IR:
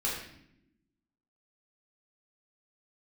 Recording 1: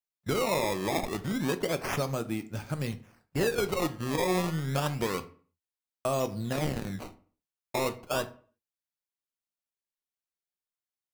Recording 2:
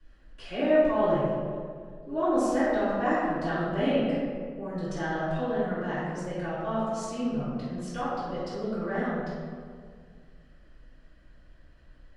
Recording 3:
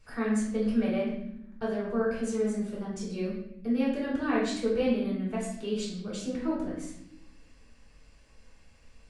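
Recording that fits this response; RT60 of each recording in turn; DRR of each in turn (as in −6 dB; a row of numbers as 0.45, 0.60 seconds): 3; 0.45, 2.0, 0.75 seconds; 9.5, −15.0, −6.5 decibels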